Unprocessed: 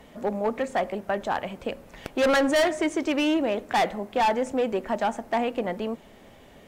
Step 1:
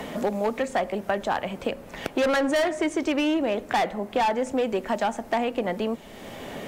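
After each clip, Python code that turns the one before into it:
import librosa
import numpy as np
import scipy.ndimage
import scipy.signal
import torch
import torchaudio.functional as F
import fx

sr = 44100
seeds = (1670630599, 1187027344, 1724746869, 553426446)

y = fx.band_squash(x, sr, depth_pct=70)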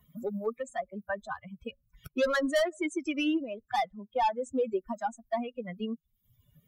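y = fx.bin_expand(x, sr, power=3.0)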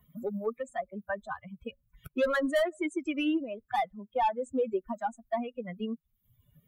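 y = fx.peak_eq(x, sr, hz=5400.0, db=-13.5, octaves=0.73)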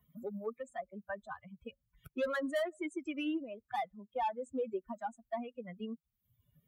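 y = scipy.signal.sosfilt(scipy.signal.butter(2, 40.0, 'highpass', fs=sr, output='sos'), x)
y = y * 10.0 ** (-7.0 / 20.0)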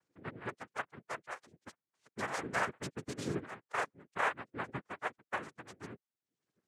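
y = fx.cabinet(x, sr, low_hz=380.0, low_slope=12, high_hz=3400.0, hz=(510.0, 1700.0, 2700.0), db=(-7, -8, -6))
y = fx.noise_vocoder(y, sr, seeds[0], bands=3)
y = y * 10.0 ** (2.5 / 20.0)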